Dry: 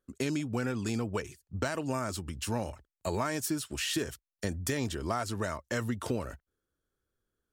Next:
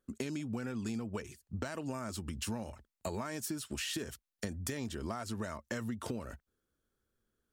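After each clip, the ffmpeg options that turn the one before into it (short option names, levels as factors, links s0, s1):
-af "equalizer=f=220:t=o:w=0.26:g=7,acompressor=threshold=0.0141:ratio=4,volume=1.12"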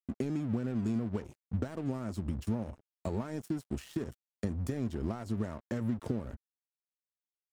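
-af "tiltshelf=f=730:g=8.5,aeval=exprs='sgn(val(0))*max(abs(val(0))-0.00473,0)':c=same"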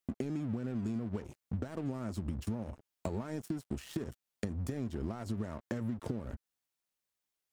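-af "acompressor=threshold=0.00631:ratio=3,volume=2.37"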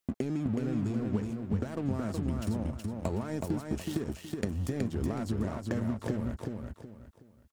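-af "aecho=1:1:371|742|1113|1484:0.631|0.196|0.0606|0.0188,volume=1.58"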